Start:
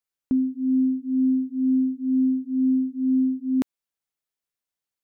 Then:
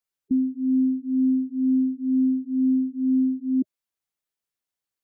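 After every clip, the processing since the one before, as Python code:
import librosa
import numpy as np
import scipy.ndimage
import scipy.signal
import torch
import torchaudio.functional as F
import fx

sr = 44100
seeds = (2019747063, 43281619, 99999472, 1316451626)

y = fx.spec_gate(x, sr, threshold_db=-15, keep='strong')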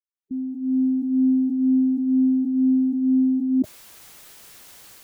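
y = fx.fade_in_head(x, sr, length_s=1.01)
y = fx.sustainer(y, sr, db_per_s=22.0)
y = F.gain(torch.from_numpy(y), 2.0).numpy()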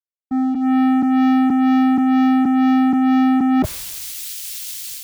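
y = fx.leveller(x, sr, passes=5)
y = fx.band_widen(y, sr, depth_pct=100)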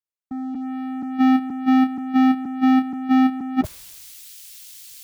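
y = fx.level_steps(x, sr, step_db=14)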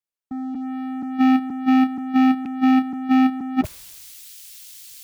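y = fx.rattle_buzz(x, sr, strikes_db=-30.0, level_db=-28.0)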